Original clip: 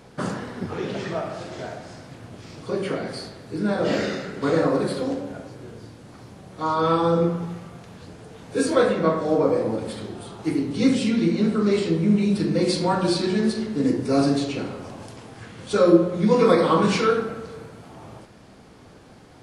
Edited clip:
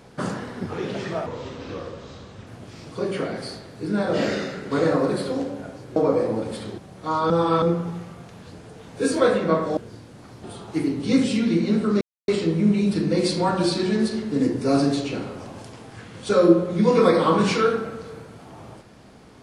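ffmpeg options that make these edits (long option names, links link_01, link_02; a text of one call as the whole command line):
ffmpeg -i in.wav -filter_complex "[0:a]asplit=10[link_01][link_02][link_03][link_04][link_05][link_06][link_07][link_08][link_09][link_10];[link_01]atrim=end=1.264[link_11];[link_02]atrim=start=1.26:end=2.18,asetpts=PTS-STARTPTS,asetrate=33516,aresample=44100,atrim=end_sample=53384,asetpts=PTS-STARTPTS[link_12];[link_03]atrim=start=2.176:end=5.672[link_13];[link_04]atrim=start=9.318:end=10.142[link_14];[link_05]atrim=start=6.328:end=6.852[link_15];[link_06]atrim=start=6.848:end=7.172,asetpts=PTS-STARTPTS,areverse[link_16];[link_07]atrim=start=7.168:end=9.322[link_17];[link_08]atrim=start=5.668:end=6.332[link_18];[link_09]atrim=start=10.138:end=11.72,asetpts=PTS-STARTPTS,afade=type=out:start_time=1.578:duration=0.004:curve=hsin,apad=pad_dur=0.27[link_19];[link_10]atrim=start=11.72,asetpts=PTS-STARTPTS,afade=type=in:duration=0.004:curve=hsin[link_20];[link_11][link_12]acrossfade=duration=0.004:curve1=hsin:curve2=hsin[link_21];[link_21][link_13]acrossfade=duration=0.004:curve1=hsin:curve2=hsin[link_22];[link_22][link_14]acrossfade=duration=0.004:curve1=hsin:curve2=hsin[link_23];[link_23][link_15]acrossfade=duration=0.004:curve1=hsin:curve2=hsin[link_24];[link_24][link_16]acrossfade=duration=0.004:curve1=hsin:curve2=hsin[link_25];[link_25][link_17]acrossfade=duration=0.004:curve1=hsin:curve2=hsin[link_26];[link_26][link_18]acrossfade=duration=0.004:curve1=hsin:curve2=hsin[link_27];[link_19][link_20]concat=n=2:v=0:a=1[link_28];[link_27][link_28]acrossfade=duration=0.004:curve1=hsin:curve2=hsin" out.wav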